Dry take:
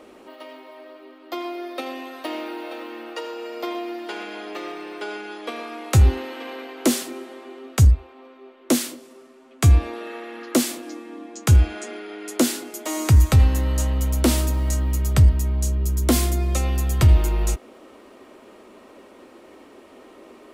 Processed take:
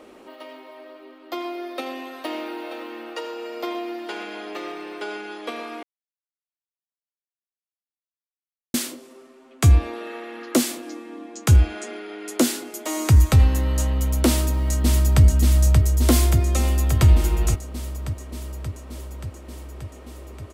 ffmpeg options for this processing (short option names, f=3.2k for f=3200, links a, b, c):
-filter_complex "[0:a]asplit=2[a][b];[b]afade=t=in:st=14.26:d=0.01,afade=t=out:st=15.23:d=0.01,aecho=0:1:580|1160|1740|2320|2900|3480|4060|4640|5220|5800|6380|6960:0.668344|0.501258|0.375943|0.281958|0.211468|0.158601|0.118951|0.0892131|0.0669099|0.0501824|0.0376368|0.0282276[c];[a][c]amix=inputs=2:normalize=0,asplit=3[d][e][f];[d]atrim=end=5.83,asetpts=PTS-STARTPTS,afade=t=out:st=5.826:d=0.004:c=hsin[g];[e]atrim=start=5.83:end=8.74,asetpts=PTS-STARTPTS,volume=0[h];[f]atrim=start=8.74,asetpts=PTS-STARTPTS,afade=t=in:d=0.004:c=hsin[i];[g][h][i]concat=n=3:v=0:a=1"